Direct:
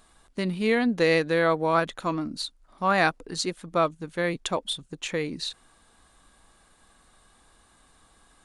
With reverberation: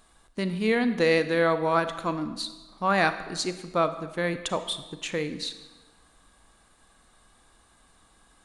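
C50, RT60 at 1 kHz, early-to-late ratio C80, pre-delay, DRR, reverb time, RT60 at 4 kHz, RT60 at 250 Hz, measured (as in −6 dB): 11.5 dB, 1.2 s, 13.5 dB, 32 ms, 10.5 dB, 1.3 s, 1.0 s, 1.2 s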